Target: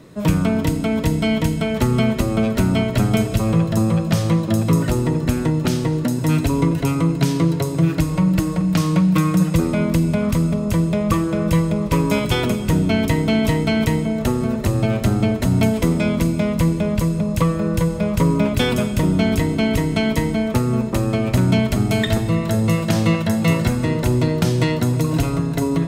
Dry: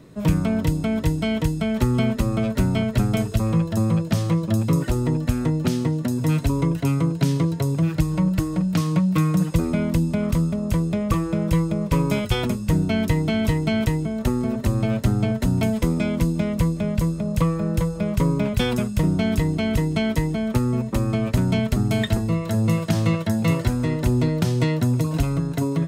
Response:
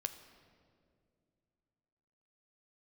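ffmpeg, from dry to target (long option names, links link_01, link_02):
-filter_complex "[0:a]lowshelf=frequency=160:gain=-5.5[link_01];[1:a]atrim=start_sample=2205,asetrate=39249,aresample=44100[link_02];[link_01][link_02]afir=irnorm=-1:irlink=0,volume=5.5dB"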